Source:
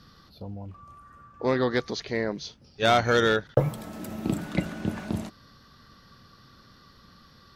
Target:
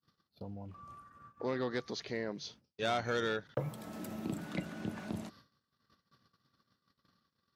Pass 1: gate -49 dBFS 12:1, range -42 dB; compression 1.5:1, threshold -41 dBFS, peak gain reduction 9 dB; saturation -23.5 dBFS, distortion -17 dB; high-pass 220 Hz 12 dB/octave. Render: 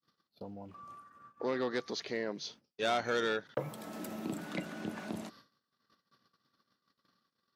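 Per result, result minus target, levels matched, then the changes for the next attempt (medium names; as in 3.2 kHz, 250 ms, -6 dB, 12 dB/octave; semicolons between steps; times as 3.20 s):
125 Hz band -6.5 dB; compression: peak gain reduction -3 dB
change: high-pass 100 Hz 12 dB/octave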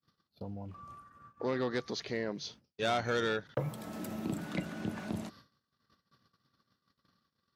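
compression: peak gain reduction -3 dB
change: compression 1.5:1, threshold -49.5 dBFS, peak gain reduction 12 dB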